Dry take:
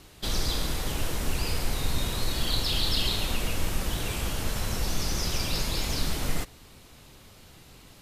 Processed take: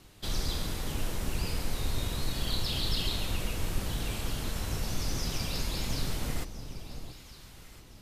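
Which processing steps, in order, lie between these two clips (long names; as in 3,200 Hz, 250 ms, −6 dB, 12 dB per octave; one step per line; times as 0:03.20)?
sub-octave generator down 1 octave, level +1 dB
delay that swaps between a low-pass and a high-pass 680 ms, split 940 Hz, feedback 51%, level −9.5 dB
level −5.5 dB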